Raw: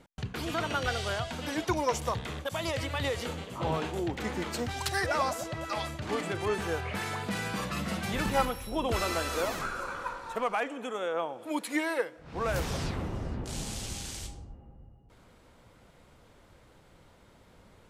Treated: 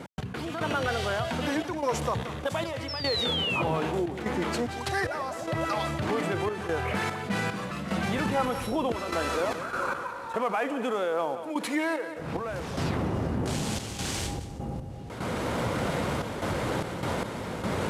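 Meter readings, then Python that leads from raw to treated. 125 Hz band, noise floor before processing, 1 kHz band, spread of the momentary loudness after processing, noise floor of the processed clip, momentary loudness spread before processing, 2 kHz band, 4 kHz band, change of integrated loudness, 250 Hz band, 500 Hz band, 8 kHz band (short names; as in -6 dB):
+4.0 dB, -59 dBFS, +3.0 dB, 6 LU, -38 dBFS, 7 LU, +2.5 dB, +4.5 dB, +2.5 dB, +5.0 dB, +4.0 dB, +0.5 dB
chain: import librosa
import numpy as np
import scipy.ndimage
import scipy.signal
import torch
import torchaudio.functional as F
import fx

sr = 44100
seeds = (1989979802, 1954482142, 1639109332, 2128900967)

y = fx.cvsd(x, sr, bps=64000)
y = fx.recorder_agc(y, sr, target_db=-22.0, rise_db_per_s=15.0, max_gain_db=30)
y = scipy.signal.sosfilt(scipy.signal.butter(2, 100.0, 'highpass', fs=sr, output='sos'), y)
y = fx.high_shelf(y, sr, hz=3100.0, db=-9.0)
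y = fx.spec_paint(y, sr, seeds[0], shape='fall', start_s=2.88, length_s=0.74, low_hz=2400.0, high_hz=5500.0, level_db=-34.0)
y = fx.step_gate(y, sr, bpm=74, pattern='x..xxxxx.xx.', floor_db=-12.0, edge_ms=4.5)
y = fx.echo_feedback(y, sr, ms=178, feedback_pct=27, wet_db=-19.5)
y = fx.env_flatten(y, sr, amount_pct=50)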